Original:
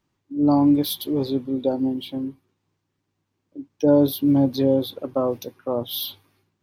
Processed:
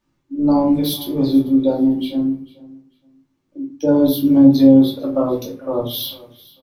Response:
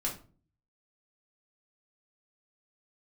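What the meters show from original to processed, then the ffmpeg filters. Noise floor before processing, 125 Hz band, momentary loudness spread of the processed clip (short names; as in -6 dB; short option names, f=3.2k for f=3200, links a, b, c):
-77 dBFS, +3.0 dB, 15 LU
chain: -filter_complex "[0:a]aecho=1:1:447|894:0.0891|0.0196[a];[1:a]atrim=start_sample=2205[b];[a][b]afir=irnorm=-1:irlink=0"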